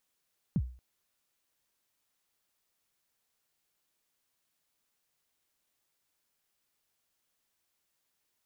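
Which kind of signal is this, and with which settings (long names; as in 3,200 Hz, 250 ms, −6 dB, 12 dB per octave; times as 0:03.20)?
synth kick length 0.23 s, from 220 Hz, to 62 Hz, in 54 ms, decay 0.41 s, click off, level −22 dB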